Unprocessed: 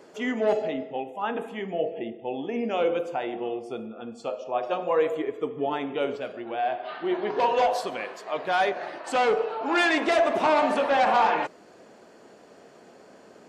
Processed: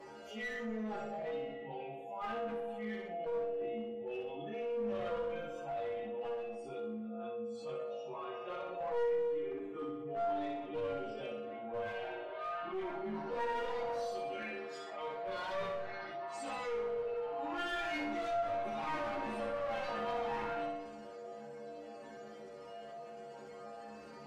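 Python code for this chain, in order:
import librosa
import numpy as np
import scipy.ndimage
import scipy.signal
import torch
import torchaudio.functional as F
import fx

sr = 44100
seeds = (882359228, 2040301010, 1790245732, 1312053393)

p1 = fx.low_shelf(x, sr, hz=220.0, db=-3.0)
p2 = fx.stretch_vocoder_free(p1, sr, factor=1.8)
p3 = fx.chorus_voices(p2, sr, voices=4, hz=0.3, base_ms=18, depth_ms=1.1, mix_pct=60)
p4 = 10.0 ** (-30.0 / 20.0) * np.tanh(p3 / 10.0 ** (-30.0 / 20.0))
p5 = p3 + (p4 * 10.0 ** (-3.0 / 20.0))
p6 = fx.stiff_resonator(p5, sr, f0_hz=70.0, decay_s=0.65, stiffness=0.008)
p7 = fx.clip_asym(p6, sr, top_db=-40.5, bottom_db=-22.5)
p8 = fx.high_shelf(p7, sr, hz=3400.0, db=-8.5)
p9 = fx.echo_feedback(p8, sr, ms=61, feedback_pct=43, wet_db=-5.5)
p10 = fx.room_shoebox(p9, sr, seeds[0], volume_m3=750.0, walls='furnished', distance_m=0.72)
p11 = fx.env_flatten(p10, sr, amount_pct=50)
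y = p11 * 10.0 ** (-6.0 / 20.0)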